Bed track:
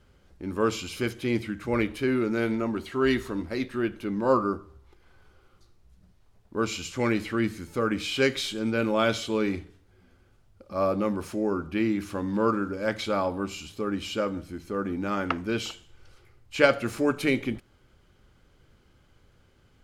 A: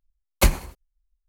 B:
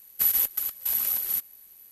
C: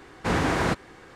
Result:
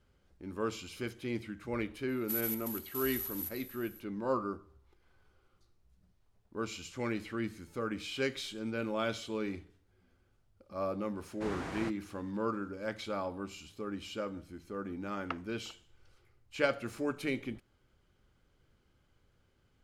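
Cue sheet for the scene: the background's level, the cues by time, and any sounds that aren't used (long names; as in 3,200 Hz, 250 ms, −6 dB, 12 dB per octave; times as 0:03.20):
bed track −10 dB
0:02.09: mix in B −13.5 dB + feedback echo with a high-pass in the loop 132 ms, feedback 80%, level −15 dB
0:11.16: mix in C −16.5 dB
not used: A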